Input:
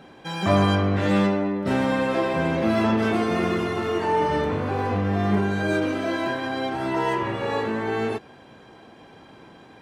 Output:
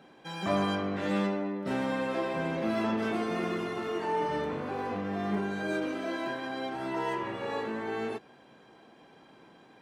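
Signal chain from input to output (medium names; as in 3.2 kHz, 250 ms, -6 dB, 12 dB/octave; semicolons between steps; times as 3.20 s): high-pass 59 Hz; peaking EQ 91 Hz -15 dB 0.52 oct; trim -8 dB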